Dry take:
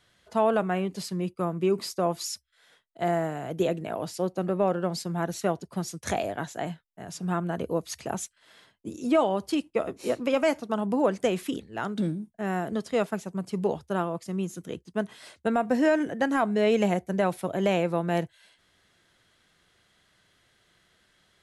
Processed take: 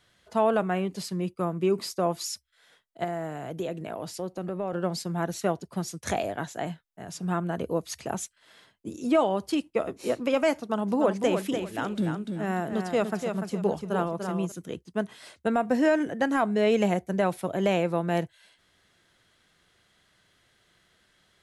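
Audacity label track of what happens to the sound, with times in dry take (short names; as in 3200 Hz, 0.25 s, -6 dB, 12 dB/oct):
3.040000	4.730000	compressor 2:1, threshold -32 dBFS
10.570000	14.520000	feedback echo 0.294 s, feedback 26%, level -6 dB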